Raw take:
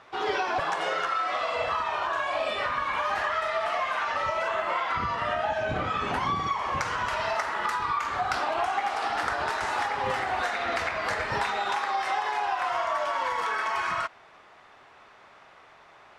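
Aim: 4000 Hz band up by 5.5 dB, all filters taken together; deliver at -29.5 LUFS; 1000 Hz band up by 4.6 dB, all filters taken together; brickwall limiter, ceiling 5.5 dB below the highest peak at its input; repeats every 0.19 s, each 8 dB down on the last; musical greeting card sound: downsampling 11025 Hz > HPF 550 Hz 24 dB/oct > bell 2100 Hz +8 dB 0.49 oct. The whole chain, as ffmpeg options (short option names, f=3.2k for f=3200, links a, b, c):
-af "equalizer=f=1k:t=o:g=5,equalizer=f=4k:t=o:g=5.5,alimiter=limit=-16.5dB:level=0:latency=1,aecho=1:1:190|380|570|760|950:0.398|0.159|0.0637|0.0255|0.0102,aresample=11025,aresample=44100,highpass=f=550:w=0.5412,highpass=f=550:w=1.3066,equalizer=f=2.1k:t=o:w=0.49:g=8,volume=-6dB"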